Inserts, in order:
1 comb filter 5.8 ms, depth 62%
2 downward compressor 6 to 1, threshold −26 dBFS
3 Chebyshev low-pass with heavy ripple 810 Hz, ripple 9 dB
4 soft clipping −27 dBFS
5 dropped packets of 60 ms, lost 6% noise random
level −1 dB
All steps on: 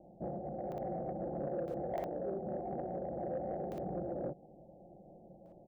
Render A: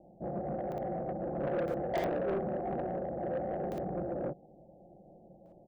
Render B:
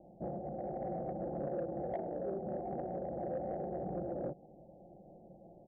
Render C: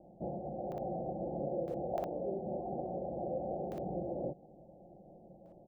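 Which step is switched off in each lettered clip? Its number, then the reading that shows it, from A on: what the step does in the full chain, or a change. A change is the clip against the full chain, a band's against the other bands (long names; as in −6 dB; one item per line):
2, average gain reduction 4.0 dB
5, change in crest factor −2.0 dB
4, distortion level −23 dB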